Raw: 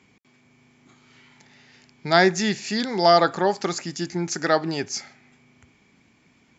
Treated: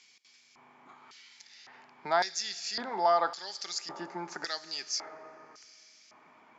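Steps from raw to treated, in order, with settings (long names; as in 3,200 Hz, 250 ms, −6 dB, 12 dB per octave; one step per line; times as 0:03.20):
four-comb reverb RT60 2.8 s, combs from 30 ms, DRR 15 dB
auto-filter band-pass square 0.9 Hz 970–5,100 Hz
multiband upward and downward compressor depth 40%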